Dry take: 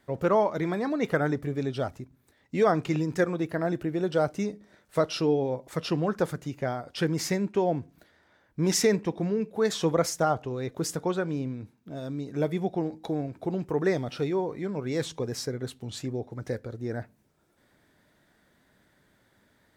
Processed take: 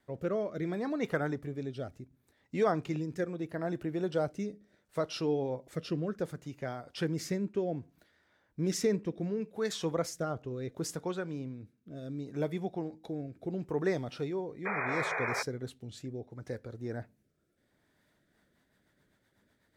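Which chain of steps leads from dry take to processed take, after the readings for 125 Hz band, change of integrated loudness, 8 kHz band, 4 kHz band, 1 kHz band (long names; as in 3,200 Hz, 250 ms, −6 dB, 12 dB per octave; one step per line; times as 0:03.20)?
−6.5 dB, −6.5 dB, −9.0 dB, −7.5 dB, −7.5 dB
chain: rotating-speaker cabinet horn 0.7 Hz, later 8 Hz, at 0:17.91
sound drawn into the spectrogram noise, 0:14.65–0:15.43, 380–2,500 Hz −29 dBFS
level −5 dB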